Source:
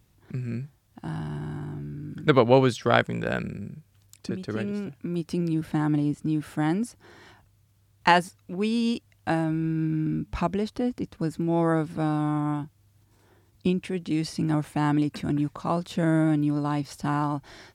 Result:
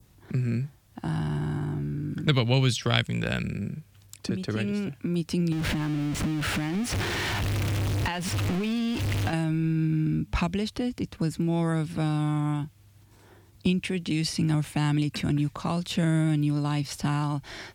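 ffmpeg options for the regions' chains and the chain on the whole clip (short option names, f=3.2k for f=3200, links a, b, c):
-filter_complex "[0:a]asettb=1/sr,asplit=3[a][b][c];[a]atrim=end=5.524[d];[b]atrim=start=5.52:end=9.33,asetpts=PTS-STARTPTS,afade=t=in:d=0.004:c=qsin,afade=t=out:st=3.806:d=0.004:c=qsin,aeval=exprs='val(0)+0.5*0.0562*sgn(val(0))':c=same,lowpass=f=2.6k:p=1,acompressor=threshold=-27dB:ratio=4:attack=3.2:release=140:knee=1:detection=peak[e];[c]atrim=start=9.326[f];[d][e]acrossfade=d=0.004:c1=hsin:c2=qsin[g];[g][f]acrossfade=d=0.004:c1=qsin:c2=hsin,adynamicequalizer=threshold=0.00447:dfrequency=2500:dqfactor=1.2:tfrequency=2500:tqfactor=1.2:attack=5:release=100:ratio=0.375:range=3:mode=boostabove:tftype=bell,acrossover=split=170|3000[h][i][j];[i]acompressor=threshold=-36dB:ratio=4[k];[h][k][j]amix=inputs=3:normalize=0,volume=5.5dB"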